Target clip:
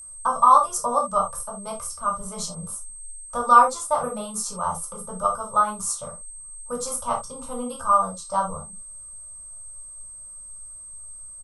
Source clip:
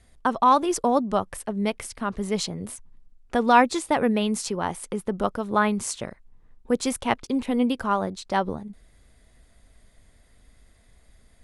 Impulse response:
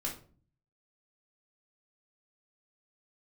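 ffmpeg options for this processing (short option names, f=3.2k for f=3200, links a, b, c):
-filter_complex "[0:a]firequalizer=gain_entry='entry(160,0);entry(320,-29);entry(490,1);entry(820,1);entry(1200,13);entry(1800,-19);entry(3100,-8);entry(5600,4);entry(9900,10)':delay=0.05:min_phase=1[a];[1:a]atrim=start_sample=2205,atrim=end_sample=3969[b];[a][b]afir=irnorm=-1:irlink=0,aeval=exprs='val(0)+0.02*sin(2*PI*8300*n/s)':c=same,volume=-4.5dB"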